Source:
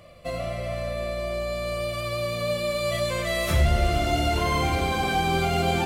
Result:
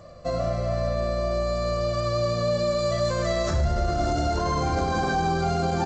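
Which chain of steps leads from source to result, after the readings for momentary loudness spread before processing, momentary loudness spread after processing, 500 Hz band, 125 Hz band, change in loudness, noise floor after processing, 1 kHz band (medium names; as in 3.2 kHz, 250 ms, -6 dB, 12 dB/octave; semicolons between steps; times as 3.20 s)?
8 LU, 2 LU, +2.0 dB, +0.5 dB, +0.5 dB, -27 dBFS, +0.5 dB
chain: high-order bell 2.7 kHz -13 dB 1 oct; peak limiter -20 dBFS, peak gain reduction 9 dB; on a send: feedback delay 103 ms, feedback 25%, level -15.5 dB; on the sum: trim +4 dB; G.722 64 kbps 16 kHz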